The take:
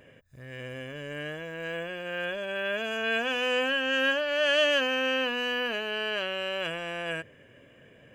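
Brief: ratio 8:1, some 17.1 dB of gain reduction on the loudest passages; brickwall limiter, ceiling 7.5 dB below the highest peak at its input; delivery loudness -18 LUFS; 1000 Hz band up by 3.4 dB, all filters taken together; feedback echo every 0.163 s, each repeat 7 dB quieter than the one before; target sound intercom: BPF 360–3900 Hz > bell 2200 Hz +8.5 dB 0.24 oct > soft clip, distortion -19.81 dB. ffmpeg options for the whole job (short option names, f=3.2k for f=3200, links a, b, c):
-af "equalizer=f=1k:t=o:g=4.5,acompressor=threshold=-38dB:ratio=8,alimiter=level_in=13dB:limit=-24dB:level=0:latency=1,volume=-13dB,highpass=360,lowpass=3.9k,equalizer=f=2.2k:t=o:w=0.24:g=8.5,aecho=1:1:163|326|489|652|815:0.447|0.201|0.0905|0.0407|0.0183,asoftclip=threshold=-34.5dB,volume=26dB"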